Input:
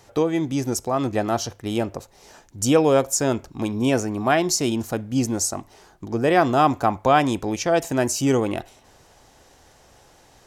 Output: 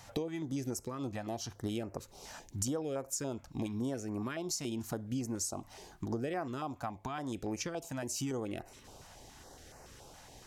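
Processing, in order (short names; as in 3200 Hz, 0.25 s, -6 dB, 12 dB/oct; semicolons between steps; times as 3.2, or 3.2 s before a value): compressor 10:1, threshold -33 dBFS, peak gain reduction 21 dB; stepped notch 7.1 Hz 390–3400 Hz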